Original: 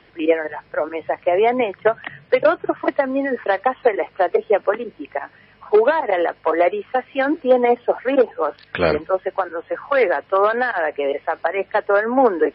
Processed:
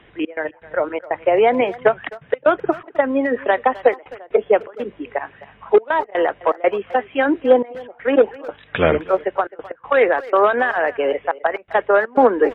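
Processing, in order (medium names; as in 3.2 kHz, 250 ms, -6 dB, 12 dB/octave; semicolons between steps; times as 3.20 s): bass shelf 110 Hz +5.5 dB; reverse; upward compressor, threshold -34 dBFS; reverse; trance gate "xx.x.xxx.xxxxxx" 122 bpm -24 dB; brick-wall FIR low-pass 3.9 kHz; speakerphone echo 260 ms, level -18 dB; trim +1.5 dB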